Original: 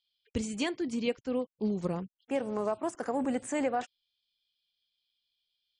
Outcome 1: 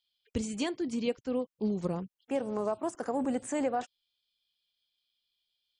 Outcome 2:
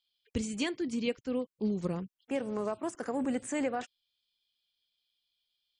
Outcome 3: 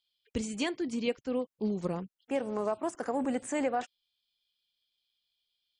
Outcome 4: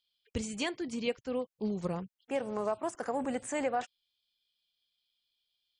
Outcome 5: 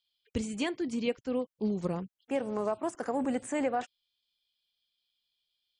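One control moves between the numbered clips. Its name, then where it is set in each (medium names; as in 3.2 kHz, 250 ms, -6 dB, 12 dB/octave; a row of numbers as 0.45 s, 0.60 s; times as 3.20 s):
dynamic bell, frequency: 2.1 kHz, 780 Hz, 100 Hz, 280 Hz, 5.5 kHz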